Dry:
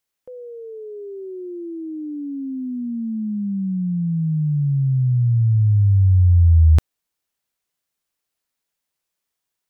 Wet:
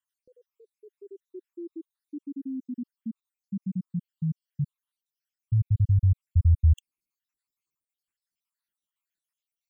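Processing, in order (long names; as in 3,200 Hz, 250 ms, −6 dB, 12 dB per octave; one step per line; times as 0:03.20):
time-frequency cells dropped at random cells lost 73%
flat-topped bell 600 Hz −15.5 dB 1 octave
level −5 dB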